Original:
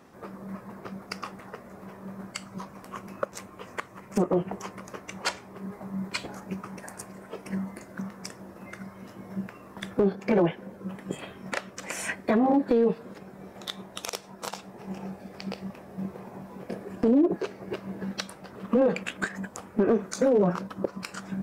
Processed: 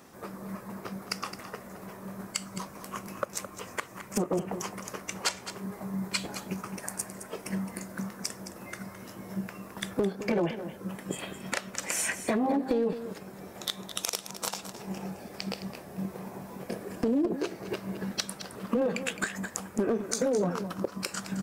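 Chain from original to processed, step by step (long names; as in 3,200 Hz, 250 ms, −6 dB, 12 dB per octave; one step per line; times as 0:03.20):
high-shelf EQ 4,400 Hz +11.5 dB
downward compressor 2 to 1, threshold −28 dBFS, peak gain reduction 6 dB
single-tap delay 215 ms −11.5 dB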